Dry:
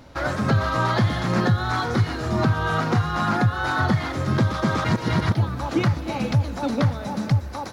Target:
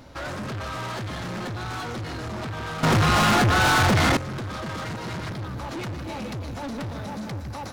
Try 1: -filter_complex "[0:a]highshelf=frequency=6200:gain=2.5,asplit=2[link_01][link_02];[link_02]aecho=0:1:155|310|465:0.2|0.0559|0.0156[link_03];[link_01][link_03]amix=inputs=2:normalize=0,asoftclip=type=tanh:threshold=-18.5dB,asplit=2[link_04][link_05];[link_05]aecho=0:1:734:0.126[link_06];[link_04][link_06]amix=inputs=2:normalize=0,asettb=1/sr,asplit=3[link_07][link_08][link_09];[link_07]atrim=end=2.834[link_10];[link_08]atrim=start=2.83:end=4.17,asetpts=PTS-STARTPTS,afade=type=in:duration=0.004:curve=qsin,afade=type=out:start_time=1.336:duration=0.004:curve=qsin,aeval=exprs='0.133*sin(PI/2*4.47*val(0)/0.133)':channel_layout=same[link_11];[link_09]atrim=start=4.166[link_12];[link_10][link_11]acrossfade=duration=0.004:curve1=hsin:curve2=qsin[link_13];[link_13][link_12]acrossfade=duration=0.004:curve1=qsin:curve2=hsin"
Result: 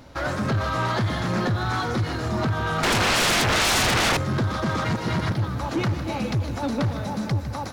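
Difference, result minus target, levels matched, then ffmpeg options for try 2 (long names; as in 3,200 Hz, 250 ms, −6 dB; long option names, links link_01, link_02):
soft clipping: distortion −8 dB
-filter_complex "[0:a]highshelf=frequency=6200:gain=2.5,asplit=2[link_01][link_02];[link_02]aecho=0:1:155|310|465:0.2|0.0559|0.0156[link_03];[link_01][link_03]amix=inputs=2:normalize=0,asoftclip=type=tanh:threshold=-30dB,asplit=2[link_04][link_05];[link_05]aecho=0:1:734:0.126[link_06];[link_04][link_06]amix=inputs=2:normalize=0,asettb=1/sr,asplit=3[link_07][link_08][link_09];[link_07]atrim=end=2.834[link_10];[link_08]atrim=start=2.83:end=4.17,asetpts=PTS-STARTPTS,afade=type=in:duration=0.004:curve=qsin,afade=type=out:start_time=1.336:duration=0.004:curve=qsin,aeval=exprs='0.133*sin(PI/2*4.47*val(0)/0.133)':channel_layout=same[link_11];[link_09]atrim=start=4.166[link_12];[link_10][link_11]acrossfade=duration=0.004:curve1=hsin:curve2=qsin[link_13];[link_13][link_12]acrossfade=duration=0.004:curve1=qsin:curve2=hsin"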